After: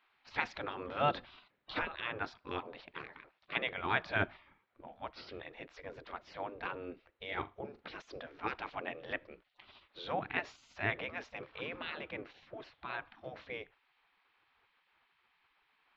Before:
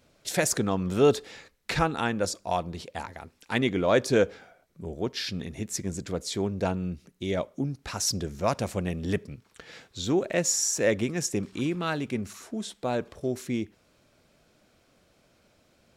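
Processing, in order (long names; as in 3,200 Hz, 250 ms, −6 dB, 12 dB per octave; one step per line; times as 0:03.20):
Bessel low-pass filter 2,100 Hz, order 8
gate on every frequency bin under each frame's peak −15 dB weak
0:07.27–0:07.83: flutter between parallel walls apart 7.1 metres, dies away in 0.2 s
level +2 dB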